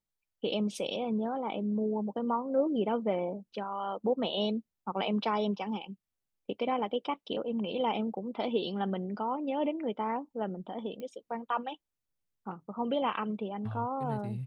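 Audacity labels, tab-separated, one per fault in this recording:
11.000000	11.000000	pop -30 dBFS

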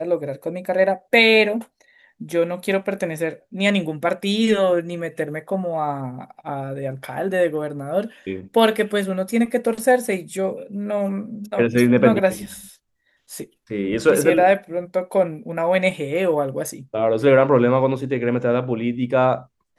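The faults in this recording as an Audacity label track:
12.460000	12.460000	gap 4 ms

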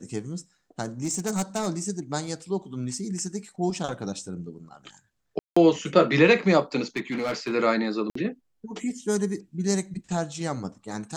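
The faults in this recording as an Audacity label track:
1.030000	1.680000	clipped -22 dBFS
5.390000	5.570000	gap 0.175 s
6.960000	7.530000	clipped -23 dBFS
8.100000	8.150000	gap 54 ms

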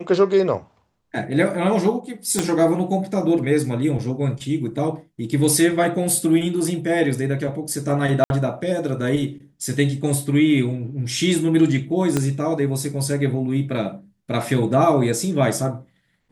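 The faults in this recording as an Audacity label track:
2.390000	2.390000	pop -5 dBFS
8.240000	8.300000	gap 61 ms
12.170000	12.170000	pop -7 dBFS

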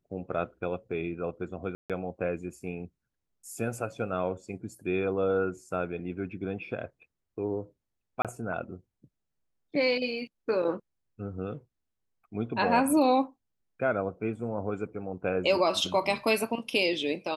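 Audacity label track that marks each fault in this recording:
1.750000	1.900000	gap 0.147 s
8.220000	8.250000	gap 27 ms

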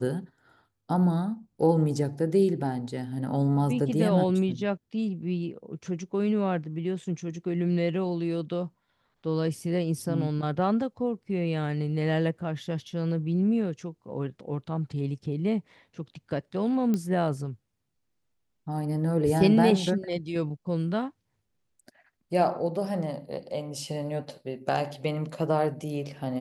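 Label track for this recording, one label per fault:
16.940000	16.940000	pop -16 dBFS

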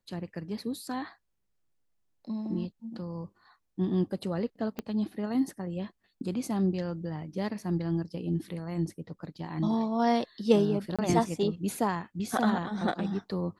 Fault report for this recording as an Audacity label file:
4.790000	4.790000	pop -20 dBFS
10.960000	10.990000	gap 26 ms

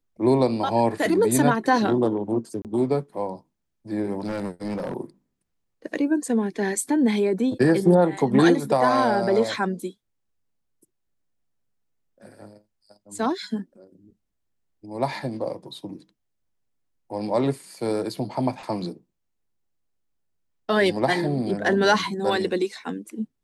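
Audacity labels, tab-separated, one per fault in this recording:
2.620000	2.650000	gap 28 ms
4.200000	4.940000	clipped -25 dBFS

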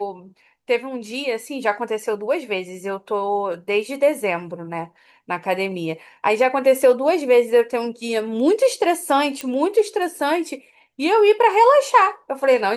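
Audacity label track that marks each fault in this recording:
9.410000	9.410000	pop -12 dBFS

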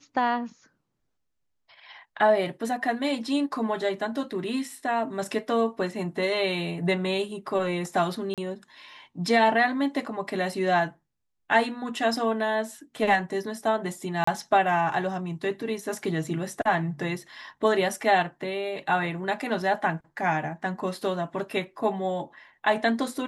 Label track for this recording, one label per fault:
8.340000	8.380000	gap 37 ms
14.240000	14.270000	gap 34 ms

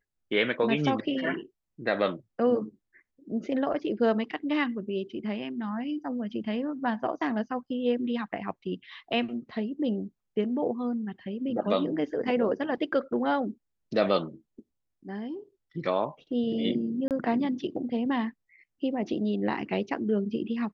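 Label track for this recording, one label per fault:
17.080000	17.110000	gap 28 ms

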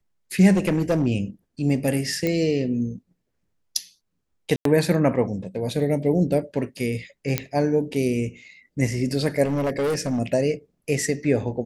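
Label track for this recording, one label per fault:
0.530000	1.070000	clipped -16 dBFS
2.270000	2.270000	pop -11 dBFS
4.560000	4.650000	gap 93 ms
7.380000	7.380000	pop -6 dBFS
9.440000	10.190000	clipped -20 dBFS

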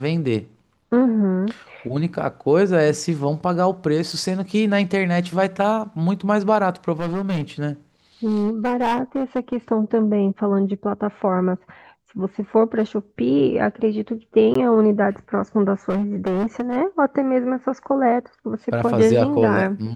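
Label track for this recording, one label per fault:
4.120000	4.120000	gap 4.5 ms
7.000000	7.430000	clipped -19.5 dBFS
8.250000	9.570000	clipped -16 dBFS
14.540000	14.550000	gap 14 ms
15.890000	16.770000	clipped -18 dBFS

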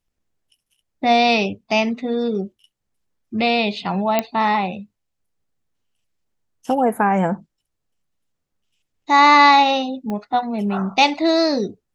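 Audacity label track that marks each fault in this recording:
4.190000	4.190000	pop -4 dBFS
10.100000	10.100000	pop -16 dBFS

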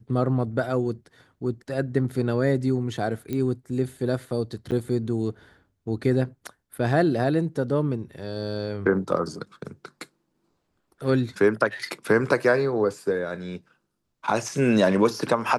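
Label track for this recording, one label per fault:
3.330000	3.330000	pop -17 dBFS
4.710000	4.720000	gap 8.8 ms

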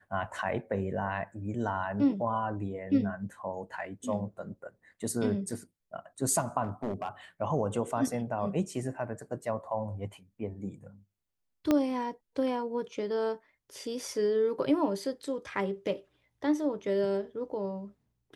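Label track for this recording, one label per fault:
6.630000	7.090000	clipped -28 dBFS
11.710000	11.710000	pop -13 dBFS

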